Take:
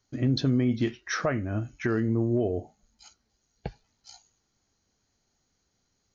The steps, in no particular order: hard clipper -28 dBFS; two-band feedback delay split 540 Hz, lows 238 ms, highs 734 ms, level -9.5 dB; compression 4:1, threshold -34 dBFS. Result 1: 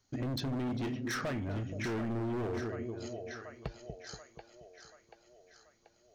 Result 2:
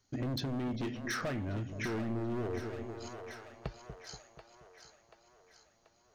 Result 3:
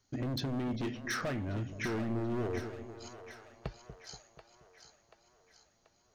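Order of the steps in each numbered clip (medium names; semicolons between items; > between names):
two-band feedback delay > hard clipper > compression; hard clipper > two-band feedback delay > compression; hard clipper > compression > two-band feedback delay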